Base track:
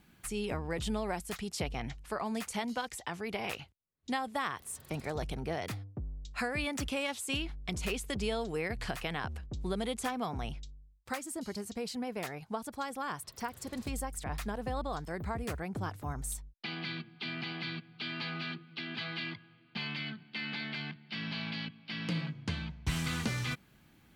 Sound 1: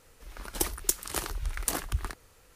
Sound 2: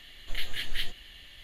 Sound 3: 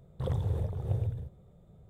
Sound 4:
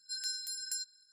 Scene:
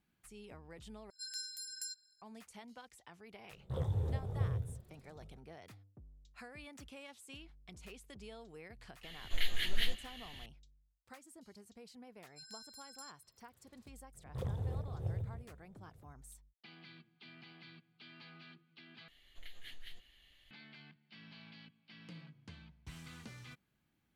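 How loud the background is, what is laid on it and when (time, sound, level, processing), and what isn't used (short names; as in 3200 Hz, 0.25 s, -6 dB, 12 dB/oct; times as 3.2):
base track -17.5 dB
1.1 replace with 4 -6 dB
3.5 add 3 -1 dB + detuned doubles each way 40 cents
9.03 add 2 -2 dB
12.27 add 4 -13.5 dB + high shelf 6000 Hz -3.5 dB
14.15 add 3 -7.5 dB
19.08 replace with 2 -16 dB + compressor 3:1, threshold -27 dBFS
not used: 1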